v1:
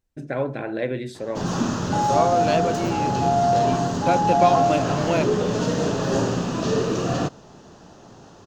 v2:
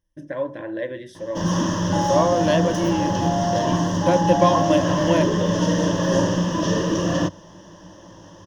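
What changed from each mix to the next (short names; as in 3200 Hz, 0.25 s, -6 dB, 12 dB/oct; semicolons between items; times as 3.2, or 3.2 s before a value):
first voice -5.5 dB; master: add ripple EQ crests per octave 1.2, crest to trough 14 dB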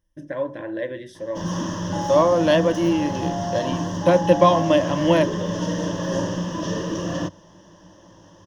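second voice +3.0 dB; background -5.0 dB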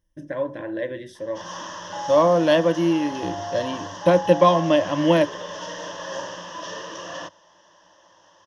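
background: add three-band isolator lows -22 dB, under 580 Hz, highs -18 dB, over 6900 Hz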